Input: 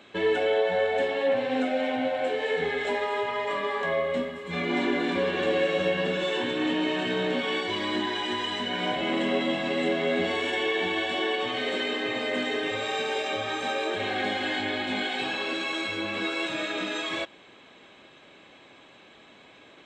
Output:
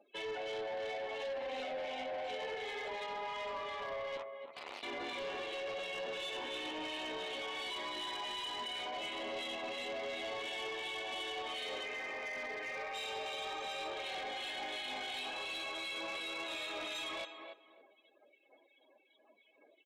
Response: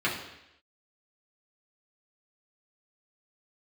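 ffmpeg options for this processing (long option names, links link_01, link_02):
-filter_complex "[0:a]acrossover=split=2000[link_01][link_02];[link_01]aeval=exprs='val(0)*(1-0.5/2+0.5/2*cos(2*PI*2.8*n/s))':channel_layout=same[link_03];[link_02]aeval=exprs='val(0)*(1-0.5/2-0.5/2*cos(2*PI*2.8*n/s))':channel_layout=same[link_04];[link_03][link_04]amix=inputs=2:normalize=0,asettb=1/sr,asplit=3[link_05][link_06][link_07];[link_05]atrim=end=4.174[link_08];[link_06]atrim=start=4.17:end=4.83,asetpts=PTS-STARTPTS,afade=type=in:duration=0.004:curve=qsin,afade=type=out:start_time=0.656:duration=0.004:curve=qsin,aeval=exprs='0.112*(cos(1*acos(clip(val(0)/0.112,-1,1)))-cos(1*PI/2))+0.0447*(cos(3*acos(clip(val(0)/0.112,-1,1)))-cos(3*PI/2))':channel_layout=same[link_09];[link_07]atrim=start=4.826[link_10];[link_08][link_09]acrossfade=duration=0.004:curve1=hsin:curve2=qsin[link_11];[link_11][link_10]acrossfade=duration=0.004:curve1=qsin:curve2=hsin,asettb=1/sr,asplit=3[link_12][link_13][link_14];[link_12]atrim=end=11.854[link_15];[link_13]atrim=start=11.85:end=12.94,asetpts=PTS-STARTPTS,afade=type=in:duration=0.004:curve=qsin,afade=type=out:start_time=1.086:duration=0.004:curve=qsin,highshelf=frequency=2700:width_type=q:width=3:gain=-8[link_16];[link_14]atrim=start=12.936[link_17];[link_15][link_16]acrossfade=duration=0.004:curve1=hsin:curve2=qsin[link_18];[link_18][link_17]acrossfade=duration=0.004:curve1=qsin:curve2=hsin,afftdn=noise_reduction=35:noise_floor=-47,highpass=670,alimiter=level_in=7dB:limit=-24dB:level=0:latency=1:release=53,volume=-7dB,asplit=2[link_19][link_20];[link_20]adelay=284,lowpass=frequency=1600:poles=1,volume=-7.5dB,asplit=2[link_21][link_22];[link_22]adelay=284,lowpass=frequency=1600:poles=1,volume=0.24,asplit=2[link_23][link_24];[link_24]adelay=284,lowpass=frequency=1600:poles=1,volume=0.24[link_25];[link_19][link_21][link_23][link_25]amix=inputs=4:normalize=0,asoftclip=type=hard:threshold=-33dB,equalizer=frequency=1600:width_type=o:width=0.59:gain=-9.5,asoftclip=type=tanh:threshold=-38dB,volume=2.5dB"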